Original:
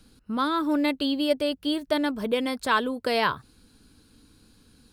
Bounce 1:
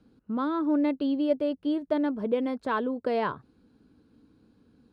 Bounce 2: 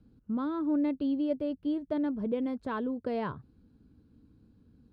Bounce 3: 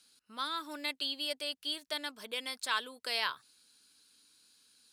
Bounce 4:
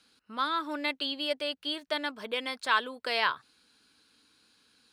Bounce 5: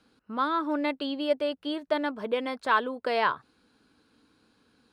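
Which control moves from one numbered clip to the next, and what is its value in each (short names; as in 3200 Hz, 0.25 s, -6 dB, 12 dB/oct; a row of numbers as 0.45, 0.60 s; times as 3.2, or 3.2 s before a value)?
band-pass, frequency: 330, 130, 6800, 2600, 980 Hz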